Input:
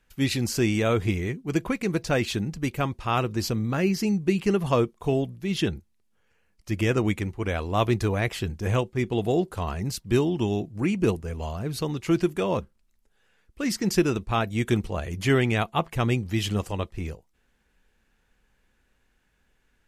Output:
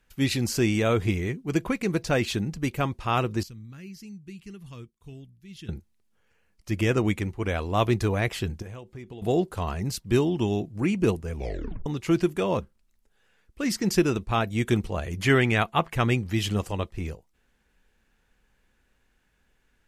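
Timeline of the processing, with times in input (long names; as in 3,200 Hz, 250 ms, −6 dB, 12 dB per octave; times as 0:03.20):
0:03.43–0:05.69: guitar amp tone stack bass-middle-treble 6-0-2
0:08.62–0:09.22: downward compressor, threshold −38 dBFS
0:11.33: tape stop 0.53 s
0:15.19–0:16.33: parametric band 1,700 Hz +4.5 dB 1.4 octaves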